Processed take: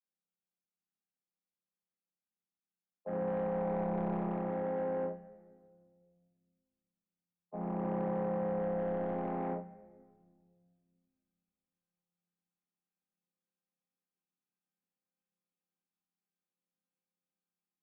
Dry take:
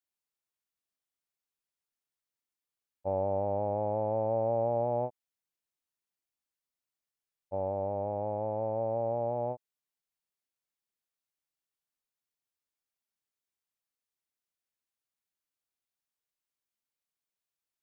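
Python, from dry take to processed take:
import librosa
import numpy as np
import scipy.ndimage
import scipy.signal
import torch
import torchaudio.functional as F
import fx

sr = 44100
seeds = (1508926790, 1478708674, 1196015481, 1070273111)

y = fx.chord_vocoder(x, sr, chord='minor triad', root=53)
y = fx.peak_eq(y, sr, hz=880.0, db=3.0, octaves=1.2, at=(3.27, 3.83))
y = fx.rider(y, sr, range_db=3, speed_s=0.5)
y = 10.0 ** (-29.5 / 20.0) * np.tanh(y / 10.0 ** (-29.5 / 20.0))
y = fx.air_absorb(y, sr, metres=310.0)
y = fx.room_early_taps(y, sr, ms=(28, 57), db=(-5.5, -7.5))
y = fx.room_shoebox(y, sr, seeds[0], volume_m3=2700.0, walls='mixed', distance_m=0.52)
y = fx.doppler_dist(y, sr, depth_ms=0.32)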